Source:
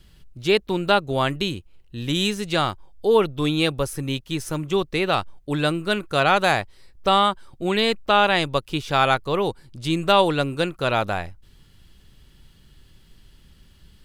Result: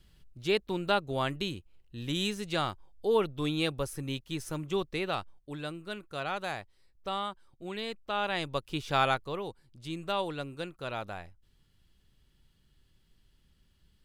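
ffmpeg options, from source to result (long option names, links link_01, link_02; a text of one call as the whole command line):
ffmpeg -i in.wav -af "volume=0.5dB,afade=type=out:start_time=4.81:duration=0.78:silence=0.421697,afade=type=in:start_time=8.06:duration=0.92:silence=0.334965,afade=type=out:start_time=8.98:duration=0.44:silence=0.398107" out.wav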